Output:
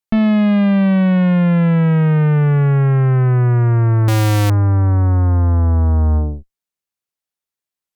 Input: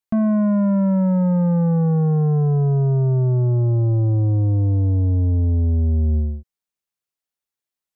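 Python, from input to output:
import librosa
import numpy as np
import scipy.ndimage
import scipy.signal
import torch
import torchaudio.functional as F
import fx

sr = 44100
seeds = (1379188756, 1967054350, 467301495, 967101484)

y = fx.clip_1bit(x, sr, at=(4.08, 4.5))
y = fx.cheby_harmonics(y, sr, harmonics=(2, 3, 6), levels_db=(-11, -17, -17), full_scale_db=-14.0)
y = y * librosa.db_to_amplitude(5.0)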